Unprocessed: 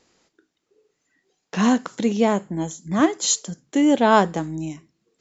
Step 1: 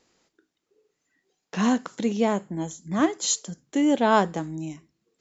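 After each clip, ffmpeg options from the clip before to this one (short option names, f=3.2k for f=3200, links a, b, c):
-af "bandreject=f=60:t=h:w=6,bandreject=f=120:t=h:w=6,volume=-4dB"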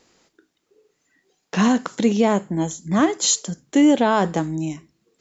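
-af "alimiter=level_in=14dB:limit=-1dB:release=50:level=0:latency=1,volume=-6.5dB"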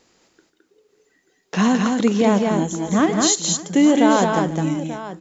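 -af "aecho=1:1:145|215|565|887:0.211|0.668|0.106|0.211"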